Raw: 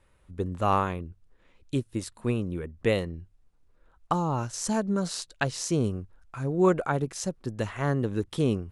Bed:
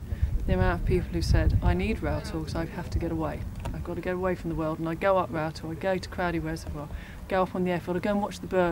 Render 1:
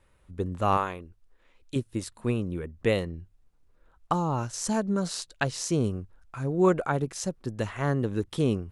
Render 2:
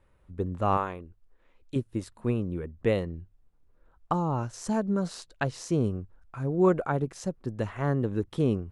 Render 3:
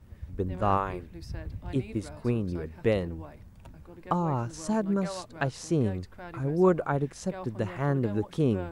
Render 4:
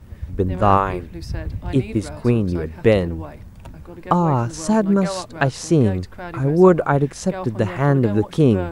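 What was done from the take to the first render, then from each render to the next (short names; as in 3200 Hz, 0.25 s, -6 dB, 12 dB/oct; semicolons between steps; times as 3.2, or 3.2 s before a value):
0.77–1.76 bell 120 Hz -10 dB 2.5 oct
high shelf 2300 Hz -10 dB
add bed -15 dB
gain +10.5 dB; limiter -2 dBFS, peak gain reduction 1.5 dB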